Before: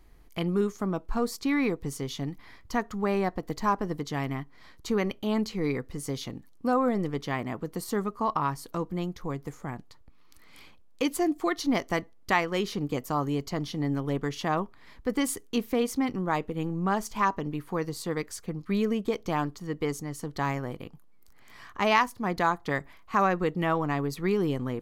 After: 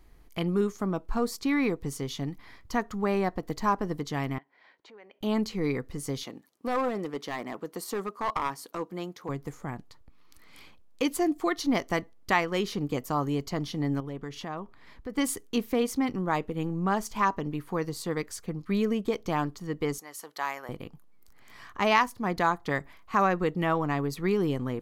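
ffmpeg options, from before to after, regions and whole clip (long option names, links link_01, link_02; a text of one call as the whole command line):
ffmpeg -i in.wav -filter_complex "[0:a]asettb=1/sr,asplit=3[link_01][link_02][link_03];[link_01]atrim=end=4.384[link_04];[link_02]atrim=start=4.38:end=5.21,asetpts=PTS-STARTPTS,afade=type=in:duration=0.004:curve=qsin,afade=type=out:start_time=0.826:duration=0.004:curve=qsin,equalizer=frequency=1200:width=4.5:gain=-11.5,acompressor=threshold=-38dB:ratio=20:attack=3.2:release=140:knee=1:detection=peak,highpass=570,lowpass=2300[link_05];[link_03]atrim=start=5.206[link_06];[link_04][link_05]acrossfade=duration=0.004:curve1=hsin:curve2=qsin[link_07];[link_07][link_06]acrossfade=duration=0.004:curve1=qsin:curve2=hsin,asettb=1/sr,asplit=3[link_08][link_09][link_10];[link_08]atrim=end=6.234[link_11];[link_09]atrim=start=6.23:end=9.29,asetpts=PTS-STARTPTS,afade=type=in:duration=0.004:curve=qsin,afade=type=out:start_time=3.056:duration=0.004:curve=qsin,highpass=190,bass=frequency=250:gain=-6,treble=frequency=4000:gain=0,aeval=exprs='clip(val(0),-1,0.0473)':channel_layout=same[link_12];[link_10]atrim=start=9.286[link_13];[link_11][link_12]acrossfade=duration=0.004:curve1=hsin:curve2=qsin[link_14];[link_14][link_13]acrossfade=duration=0.004:curve1=qsin:curve2=hsin,asettb=1/sr,asplit=3[link_15][link_16][link_17];[link_15]atrim=end=14.004[link_18];[link_16]atrim=start=14:end=15.18,asetpts=PTS-STARTPTS,afade=type=in:duration=0.004:curve=qsin,afade=type=out:start_time=1.176:duration=0.004:curve=qsin,highshelf=frequency=5400:gain=-5,acompressor=threshold=-38dB:ratio=2:attack=3.2:release=140:knee=1:detection=peak[link_19];[link_17]atrim=start=15.176[link_20];[link_18][link_19]acrossfade=duration=0.004:curve1=hsin:curve2=qsin[link_21];[link_21][link_20]acrossfade=duration=0.004:curve1=qsin:curve2=hsin,asettb=1/sr,asplit=3[link_22][link_23][link_24];[link_22]atrim=end=19.984[link_25];[link_23]atrim=start=19.98:end=20.69,asetpts=PTS-STARTPTS,afade=type=in:duration=0.004:curve=qsin,afade=type=out:start_time=0.706:duration=0.004:curve=qsin,highpass=710,equalizer=frequency=12000:width=3.3:gain=9[link_26];[link_24]atrim=start=20.686[link_27];[link_25][link_26]acrossfade=duration=0.004:curve1=hsin:curve2=qsin[link_28];[link_28][link_27]acrossfade=duration=0.004:curve1=qsin:curve2=hsin" out.wav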